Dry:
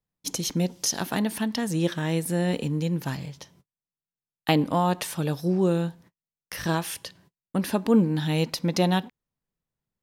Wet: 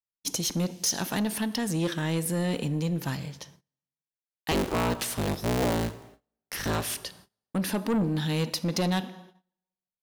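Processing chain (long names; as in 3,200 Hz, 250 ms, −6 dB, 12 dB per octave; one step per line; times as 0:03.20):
0:04.51–0:06.96: sub-harmonics by changed cycles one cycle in 3, inverted
dense smooth reverb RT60 1.2 s, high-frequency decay 0.85×, DRR 16 dB
soft clipping −21.5 dBFS, distortion −11 dB
high-shelf EQ 2,400 Hz +2.5 dB
noise gate −52 dBFS, range −23 dB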